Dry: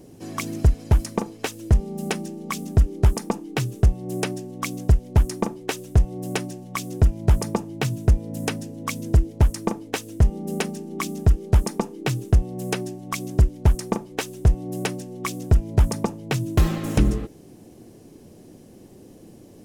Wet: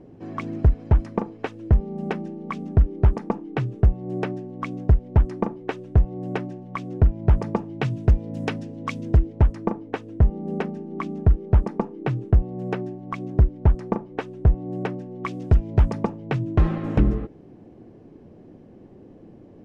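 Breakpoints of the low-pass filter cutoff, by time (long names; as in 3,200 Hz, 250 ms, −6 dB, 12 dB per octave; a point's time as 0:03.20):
0:07.15 1,800 Hz
0:08.09 3,100 Hz
0:08.95 3,100 Hz
0:09.67 1,600 Hz
0:15.10 1,600 Hz
0:15.50 3,200 Hz
0:16.52 1,800 Hz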